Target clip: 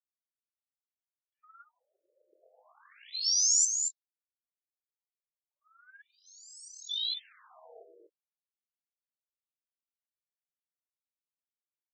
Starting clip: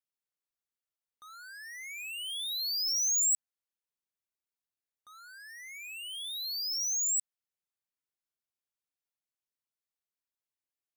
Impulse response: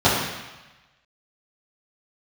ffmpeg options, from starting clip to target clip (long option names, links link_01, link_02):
-filter_complex "[0:a]aeval=exprs='if(lt(val(0),0),0.708*val(0),val(0))':channel_layout=same,equalizer=frequency=2300:width_type=o:width=2:gain=5.5,agate=range=-33dB:threshold=-38dB:ratio=3:detection=peak,aphaser=in_gain=1:out_gain=1:delay=5:decay=0.51:speed=1.4:type=triangular,aeval=exprs='0.133*(cos(1*acos(clip(val(0)/0.133,-1,1)))-cos(1*PI/2))+0.0299*(cos(4*acos(clip(val(0)/0.133,-1,1)))-cos(4*PI/2))':channel_layout=same,asplit=2[link_01][link_02];[link_02]adelay=23,volume=-14dB[link_03];[link_01][link_03]amix=inputs=2:normalize=0,aecho=1:1:215:0.531,asetrate=40517,aresample=44100,afftfilt=real='re*between(b*sr/1024,430*pow(6200/430,0.5+0.5*sin(2*PI*0.34*pts/sr))/1.41,430*pow(6200/430,0.5+0.5*sin(2*PI*0.34*pts/sr))*1.41)':imag='im*between(b*sr/1024,430*pow(6200/430,0.5+0.5*sin(2*PI*0.34*pts/sr))/1.41,430*pow(6200/430,0.5+0.5*sin(2*PI*0.34*pts/sr))*1.41)':win_size=1024:overlap=0.75,volume=1.5dB"